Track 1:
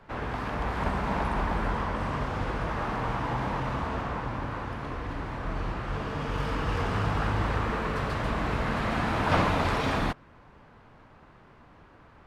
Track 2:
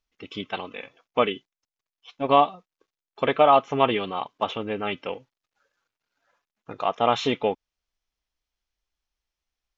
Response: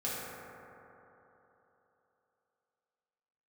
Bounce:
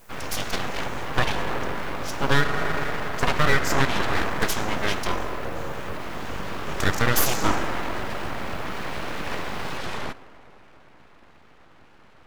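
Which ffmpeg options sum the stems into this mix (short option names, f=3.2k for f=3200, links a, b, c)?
-filter_complex "[0:a]acompressor=threshold=-28dB:ratio=4,volume=2.5dB,asplit=2[a][b];[b]volume=-21dB[c];[1:a]highshelf=f=4.1k:g=7.5,aexciter=amount=15.6:drive=6.7:freq=5.3k,volume=2dB,asplit=2[d][e];[e]volume=-8.5dB[f];[2:a]atrim=start_sample=2205[g];[c][f]amix=inputs=2:normalize=0[h];[h][g]afir=irnorm=-1:irlink=0[i];[a][d][i]amix=inputs=3:normalize=0,aeval=exprs='abs(val(0))':c=same,alimiter=limit=-6.5dB:level=0:latency=1:release=302"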